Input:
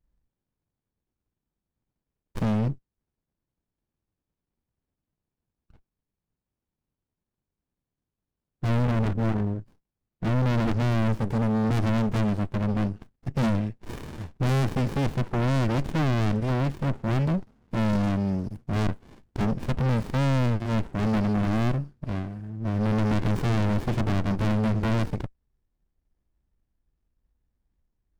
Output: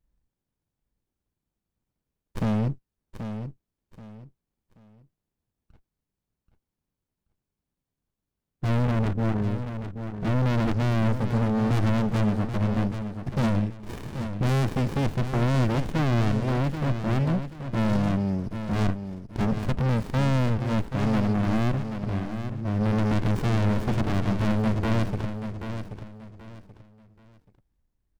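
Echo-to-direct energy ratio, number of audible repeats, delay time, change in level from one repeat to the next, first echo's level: -8.5 dB, 3, 0.781 s, -11.0 dB, -9.0 dB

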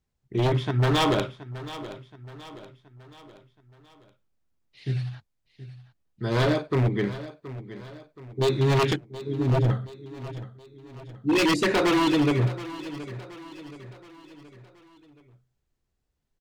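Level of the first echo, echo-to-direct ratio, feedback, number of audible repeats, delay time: -15.0 dB, -14.0 dB, 48%, 4, 0.724 s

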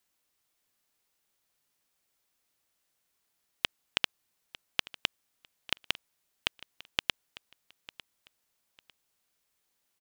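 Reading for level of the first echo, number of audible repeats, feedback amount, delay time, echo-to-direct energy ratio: -19.0 dB, 2, 25%, 0.9 s, -19.0 dB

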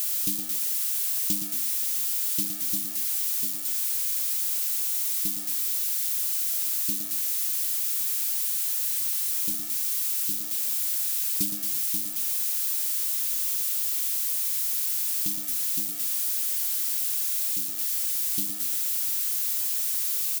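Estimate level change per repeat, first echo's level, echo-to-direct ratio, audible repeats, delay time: -7.5 dB, -8.5 dB, -7.5 dB, 3, 0.116 s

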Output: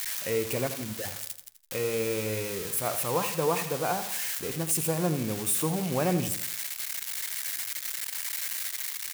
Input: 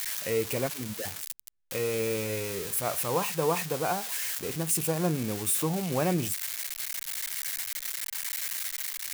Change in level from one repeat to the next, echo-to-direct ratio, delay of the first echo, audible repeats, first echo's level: -7.0 dB, -10.0 dB, 83 ms, 4, -11.0 dB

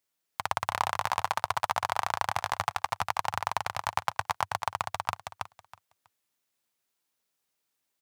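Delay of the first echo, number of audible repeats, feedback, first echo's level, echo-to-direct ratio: 0.323 s, 3, 18%, -4.5 dB, -4.5 dB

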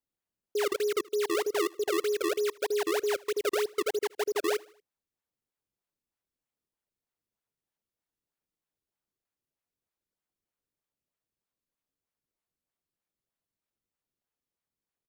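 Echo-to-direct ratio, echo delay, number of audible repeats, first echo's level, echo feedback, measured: -22.5 dB, 78 ms, 2, -23.5 dB, 48%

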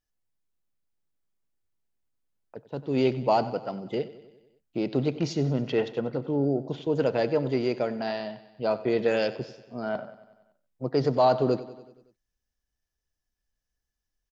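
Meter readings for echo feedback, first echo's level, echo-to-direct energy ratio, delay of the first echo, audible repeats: 60%, -16.5 dB, -14.5 dB, 94 ms, 5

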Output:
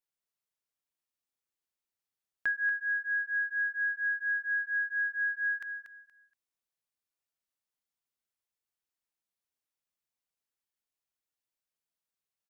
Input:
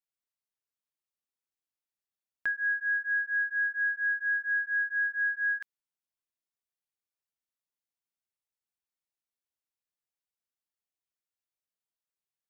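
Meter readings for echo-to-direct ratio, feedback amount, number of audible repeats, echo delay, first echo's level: -9.0 dB, 22%, 2, 0.236 s, -9.0 dB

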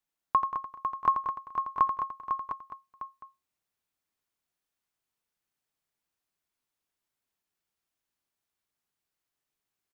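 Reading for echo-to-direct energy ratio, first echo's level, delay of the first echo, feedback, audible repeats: -2.0 dB, -8.0 dB, 85 ms, no steady repeat, 10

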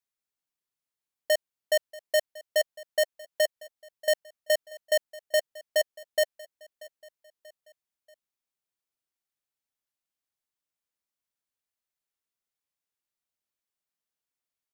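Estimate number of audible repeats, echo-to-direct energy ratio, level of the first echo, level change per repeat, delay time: 3, -19.5 dB, -20.5 dB, -6.5 dB, 0.635 s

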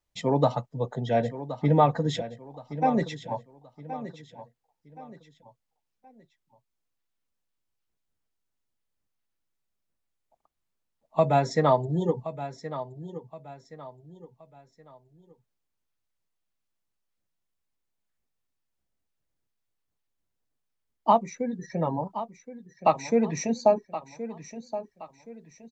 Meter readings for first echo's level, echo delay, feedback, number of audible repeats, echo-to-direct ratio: -13.0 dB, 1.072 s, 35%, 3, -12.5 dB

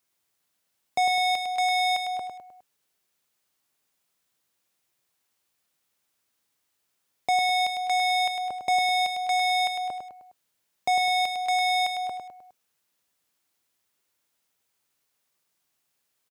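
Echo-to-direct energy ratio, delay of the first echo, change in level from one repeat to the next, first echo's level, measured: -5.0 dB, 0.103 s, -6.5 dB, -6.0 dB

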